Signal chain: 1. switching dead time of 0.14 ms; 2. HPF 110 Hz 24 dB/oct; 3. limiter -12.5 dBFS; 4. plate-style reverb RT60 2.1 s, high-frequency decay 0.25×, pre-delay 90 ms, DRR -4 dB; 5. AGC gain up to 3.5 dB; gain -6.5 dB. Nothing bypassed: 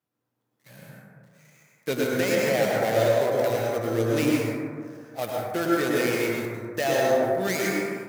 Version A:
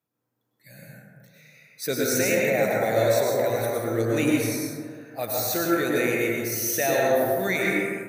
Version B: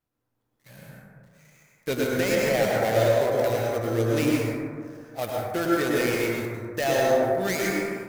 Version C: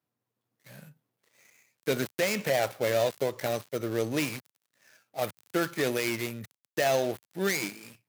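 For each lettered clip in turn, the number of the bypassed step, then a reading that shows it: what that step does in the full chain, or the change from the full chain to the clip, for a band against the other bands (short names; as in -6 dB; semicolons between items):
1, distortion -5 dB; 2, 125 Hz band +2.0 dB; 4, loudness change -5.0 LU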